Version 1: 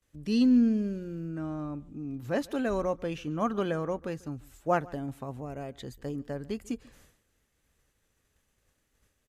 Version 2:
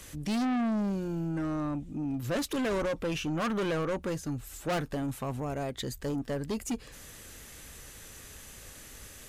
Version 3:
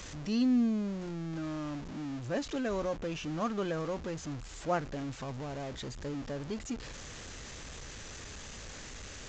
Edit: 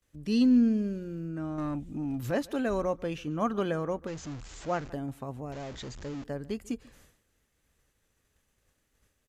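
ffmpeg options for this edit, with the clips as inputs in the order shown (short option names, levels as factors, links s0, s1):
-filter_complex "[2:a]asplit=2[s0][s1];[0:a]asplit=4[s2][s3][s4][s5];[s2]atrim=end=1.582[s6];[1:a]atrim=start=1.578:end=2.312[s7];[s3]atrim=start=2.308:end=4.072[s8];[s0]atrim=start=4.068:end=4.902[s9];[s4]atrim=start=4.898:end=5.522[s10];[s1]atrim=start=5.518:end=6.242[s11];[s5]atrim=start=6.238[s12];[s6][s7]acrossfade=d=0.004:c1=hsin:c2=hsin[s13];[s13][s8]acrossfade=d=0.004:c1=hsin:c2=hsin[s14];[s14][s9]acrossfade=d=0.004:c1=hsin:c2=hsin[s15];[s15][s10]acrossfade=d=0.004:c1=hsin:c2=hsin[s16];[s16][s11]acrossfade=d=0.004:c1=hsin:c2=hsin[s17];[s17][s12]acrossfade=d=0.004:c1=hsin:c2=hsin"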